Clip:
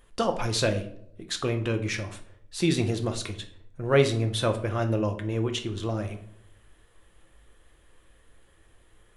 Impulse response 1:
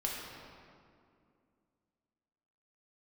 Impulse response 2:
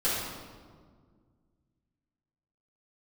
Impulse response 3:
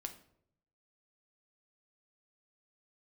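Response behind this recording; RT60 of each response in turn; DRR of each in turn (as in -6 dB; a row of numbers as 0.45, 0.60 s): 3; 2.4, 1.8, 0.70 s; -3.5, -12.5, 5.5 dB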